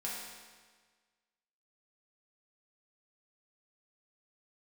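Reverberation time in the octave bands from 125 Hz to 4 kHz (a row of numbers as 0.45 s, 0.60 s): 1.5 s, 1.5 s, 1.5 s, 1.5 s, 1.5 s, 1.4 s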